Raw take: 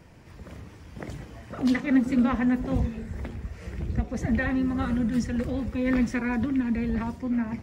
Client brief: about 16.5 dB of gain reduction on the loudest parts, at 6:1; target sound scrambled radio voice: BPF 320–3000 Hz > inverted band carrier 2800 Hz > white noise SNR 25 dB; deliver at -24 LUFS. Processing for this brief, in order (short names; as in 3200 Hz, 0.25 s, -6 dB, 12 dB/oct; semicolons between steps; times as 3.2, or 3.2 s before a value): compressor 6:1, threshold -36 dBFS; BPF 320–3000 Hz; inverted band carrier 2800 Hz; white noise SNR 25 dB; gain +18 dB